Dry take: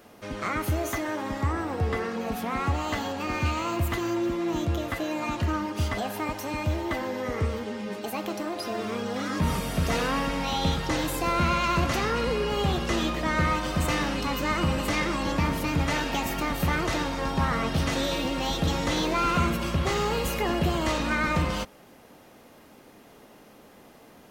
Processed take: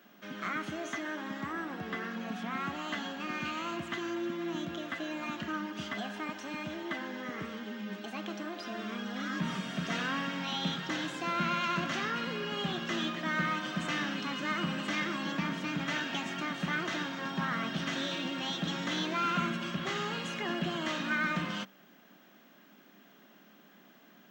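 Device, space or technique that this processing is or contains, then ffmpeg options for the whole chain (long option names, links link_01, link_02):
old television with a line whistle: -af "highpass=frequency=170:width=0.5412,highpass=frequency=170:width=1.3066,equalizer=frequency=190:width_type=q:width=4:gain=6,equalizer=frequency=480:width_type=q:width=4:gain=-10,equalizer=frequency=870:width_type=q:width=4:gain=-5,equalizer=frequency=1600:width_type=q:width=4:gain=7,equalizer=frequency=3200:width_type=q:width=4:gain=6,equalizer=frequency=4700:width_type=q:width=4:gain=-4,lowpass=frequency=6800:width=0.5412,lowpass=frequency=6800:width=1.3066,aeval=exprs='val(0)+0.00126*sin(2*PI*15734*n/s)':channel_layout=same,volume=-7dB"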